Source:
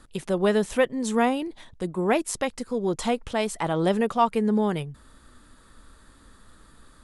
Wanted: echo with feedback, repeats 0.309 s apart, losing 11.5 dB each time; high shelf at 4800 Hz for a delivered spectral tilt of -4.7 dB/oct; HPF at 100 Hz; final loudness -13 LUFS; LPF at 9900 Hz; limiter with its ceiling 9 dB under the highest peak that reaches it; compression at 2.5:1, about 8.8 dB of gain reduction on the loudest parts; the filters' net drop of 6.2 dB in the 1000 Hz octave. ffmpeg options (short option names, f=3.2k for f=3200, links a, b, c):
-af "highpass=100,lowpass=9.9k,equalizer=f=1k:t=o:g=-9,highshelf=f=4.8k:g=6.5,acompressor=threshold=-32dB:ratio=2.5,alimiter=level_in=0.5dB:limit=-24dB:level=0:latency=1,volume=-0.5dB,aecho=1:1:309|618|927:0.266|0.0718|0.0194,volume=21.5dB"